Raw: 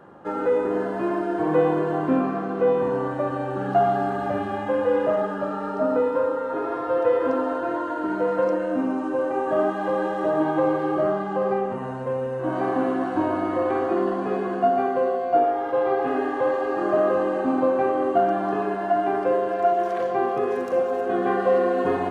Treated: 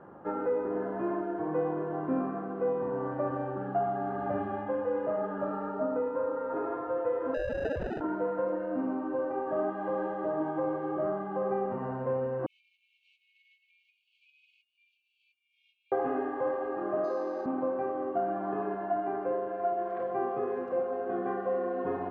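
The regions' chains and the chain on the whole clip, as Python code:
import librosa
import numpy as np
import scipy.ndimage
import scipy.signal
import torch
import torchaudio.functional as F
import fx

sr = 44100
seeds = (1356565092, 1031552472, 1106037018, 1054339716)

y = fx.chain(x, sr, fx.sine_speech(),
    fx.sample_hold(seeds[0], rate_hz=1100.0, jitter_pct=0), at=(7.34, 8.01))
y = fx.chain(y, sr, fx.over_compress(threshold_db=-27.0, ratio=-1.0),
    fx.brickwall_highpass(low_hz=2200.0), at=(12.46, 15.92))
y = fx.chain(y, sr, fx.highpass(hz=260.0, slope=24),
    fx.resample_bad(factor=8, down='none', up='hold'), at=(17.04, 17.46))
y = scipy.signal.sosfilt(scipy.signal.butter(2, 1600.0, 'lowpass', fs=sr, output='sos'), y)
y = fx.rider(y, sr, range_db=10, speed_s=0.5)
y = y * librosa.db_to_amplitude(-8.5)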